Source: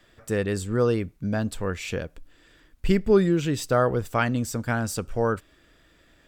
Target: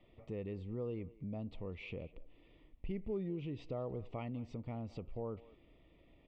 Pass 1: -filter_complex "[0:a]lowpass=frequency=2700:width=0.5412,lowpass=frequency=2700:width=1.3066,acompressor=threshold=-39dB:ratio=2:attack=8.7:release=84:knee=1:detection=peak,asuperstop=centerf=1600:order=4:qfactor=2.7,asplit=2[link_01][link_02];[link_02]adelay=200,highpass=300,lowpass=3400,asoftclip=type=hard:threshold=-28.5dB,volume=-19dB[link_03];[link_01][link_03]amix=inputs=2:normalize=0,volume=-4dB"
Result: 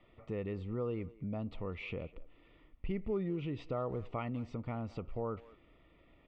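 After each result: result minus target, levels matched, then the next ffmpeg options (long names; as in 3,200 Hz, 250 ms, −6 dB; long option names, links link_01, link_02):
1,000 Hz band +3.5 dB; downward compressor: peak gain reduction −3 dB
-filter_complex "[0:a]lowpass=frequency=2700:width=0.5412,lowpass=frequency=2700:width=1.3066,equalizer=frequency=1400:width=1.8:gain=-12.5,acompressor=threshold=-39dB:ratio=2:attack=8.7:release=84:knee=1:detection=peak,asuperstop=centerf=1600:order=4:qfactor=2.7,asplit=2[link_01][link_02];[link_02]adelay=200,highpass=300,lowpass=3400,asoftclip=type=hard:threshold=-28.5dB,volume=-19dB[link_03];[link_01][link_03]amix=inputs=2:normalize=0,volume=-4dB"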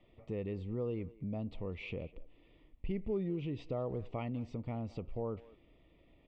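downward compressor: peak gain reduction −3.5 dB
-filter_complex "[0:a]lowpass=frequency=2700:width=0.5412,lowpass=frequency=2700:width=1.3066,equalizer=frequency=1400:width=1.8:gain=-12.5,acompressor=threshold=-46dB:ratio=2:attack=8.7:release=84:knee=1:detection=peak,asuperstop=centerf=1600:order=4:qfactor=2.7,asplit=2[link_01][link_02];[link_02]adelay=200,highpass=300,lowpass=3400,asoftclip=type=hard:threshold=-28.5dB,volume=-19dB[link_03];[link_01][link_03]amix=inputs=2:normalize=0,volume=-4dB"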